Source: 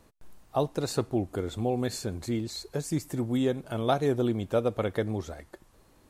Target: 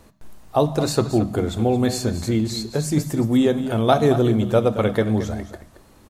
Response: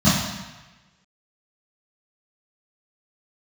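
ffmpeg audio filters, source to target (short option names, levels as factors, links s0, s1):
-filter_complex "[0:a]aecho=1:1:223:0.237,asplit=2[s0][s1];[1:a]atrim=start_sample=2205,afade=t=out:st=0.31:d=0.01,atrim=end_sample=14112,lowshelf=f=210:g=-8.5[s2];[s1][s2]afir=irnorm=-1:irlink=0,volume=0.0251[s3];[s0][s3]amix=inputs=2:normalize=0,volume=2.66"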